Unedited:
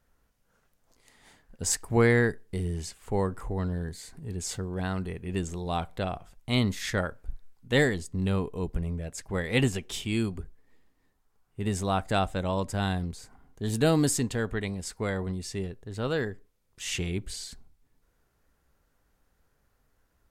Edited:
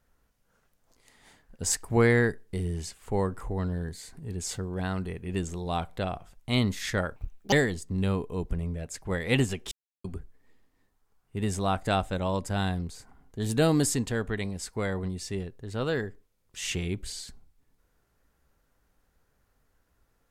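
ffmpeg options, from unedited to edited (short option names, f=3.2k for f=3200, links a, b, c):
-filter_complex "[0:a]asplit=5[a][b][c][d][e];[a]atrim=end=7.164[f];[b]atrim=start=7.16:end=7.76,asetpts=PTS-STARTPTS,asetrate=72765,aresample=44100,atrim=end_sample=16036,asetpts=PTS-STARTPTS[g];[c]atrim=start=7.756:end=9.95,asetpts=PTS-STARTPTS,afade=t=out:st=2.19:d=0.004:c=hsin[h];[d]atrim=start=9.95:end=10.28,asetpts=PTS-STARTPTS,volume=0[i];[e]atrim=start=10.28,asetpts=PTS-STARTPTS,afade=t=in:d=0.004:c=hsin[j];[f][g]acrossfade=d=0.004:c1=hsin:c2=hsin[k];[h][i][j]concat=n=3:v=0:a=1[l];[k][l]acrossfade=d=0.004:c1=hsin:c2=hsin"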